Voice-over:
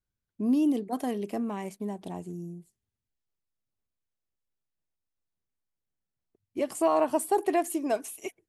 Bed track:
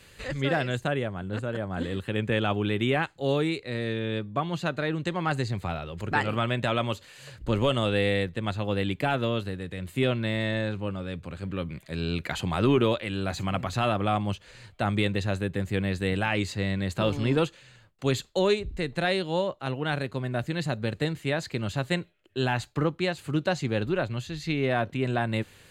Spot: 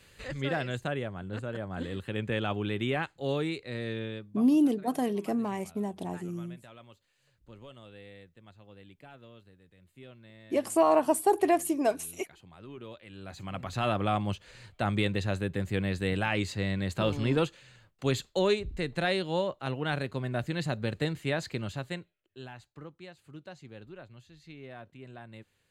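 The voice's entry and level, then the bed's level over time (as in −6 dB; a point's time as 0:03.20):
3.95 s, +1.5 dB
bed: 0:04.02 −5 dB
0:04.63 −25 dB
0:12.66 −25 dB
0:13.90 −2.5 dB
0:21.49 −2.5 dB
0:22.56 −20 dB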